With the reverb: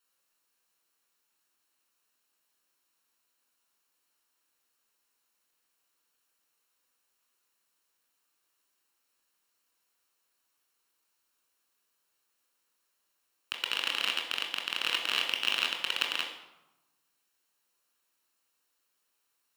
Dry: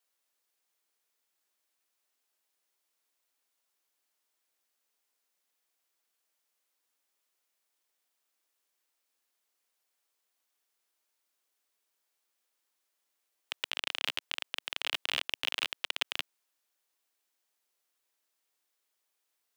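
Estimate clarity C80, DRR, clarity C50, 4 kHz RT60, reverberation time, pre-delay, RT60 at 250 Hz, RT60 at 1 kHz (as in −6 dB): 8.5 dB, 1.5 dB, 6.0 dB, 0.65 s, 1.0 s, 19 ms, 1.3 s, 1.0 s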